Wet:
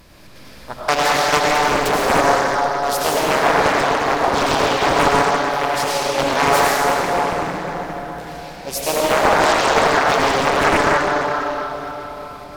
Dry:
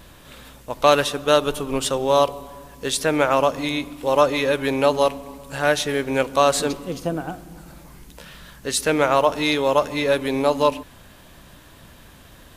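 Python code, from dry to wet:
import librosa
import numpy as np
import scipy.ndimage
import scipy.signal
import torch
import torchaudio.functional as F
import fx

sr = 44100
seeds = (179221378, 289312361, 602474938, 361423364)

y = fx.step_gate(x, sr, bpm=170, pattern='xxx.xxxxx.x', floor_db=-60.0, edge_ms=4.5)
y = fx.formant_shift(y, sr, semitones=5)
y = fx.rev_freeverb(y, sr, rt60_s=4.8, hf_ratio=0.75, predelay_ms=55, drr_db=-7.0)
y = fx.doppler_dist(y, sr, depth_ms=0.89)
y = F.gain(torch.from_numpy(y), -2.0).numpy()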